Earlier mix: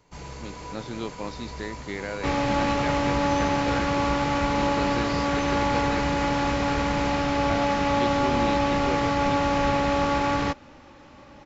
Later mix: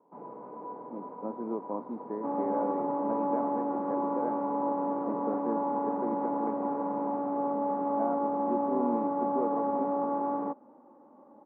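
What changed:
speech: entry +0.50 s
second sound −5.0 dB
master: add Chebyshev band-pass filter 220–1,000 Hz, order 3

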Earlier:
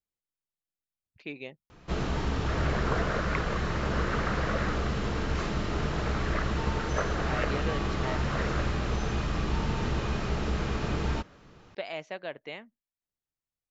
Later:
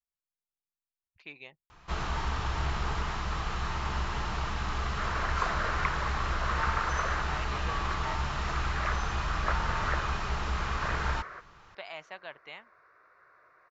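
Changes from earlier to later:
speech −3.5 dB
second sound: entry +2.50 s
master: add octave-band graphic EQ 125/250/500/1,000 Hz −5/−10/−8/+6 dB

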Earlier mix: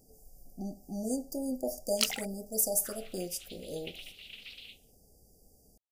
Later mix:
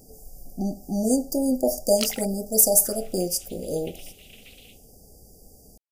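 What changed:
speech +11.5 dB
second sound: add high-frequency loss of the air 160 metres

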